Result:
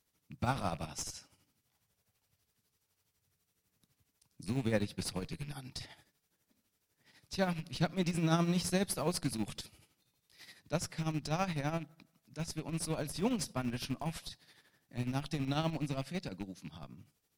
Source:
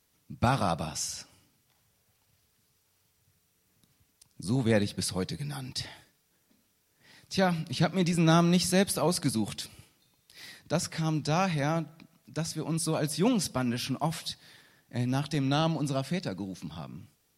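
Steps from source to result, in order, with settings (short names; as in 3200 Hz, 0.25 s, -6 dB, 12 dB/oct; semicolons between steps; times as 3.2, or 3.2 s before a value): rattling part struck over -35 dBFS, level -34 dBFS; tremolo 12 Hz, depth 63%; in parallel at -8 dB: Schmitt trigger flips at -29 dBFS; on the sum: gain -5.5 dB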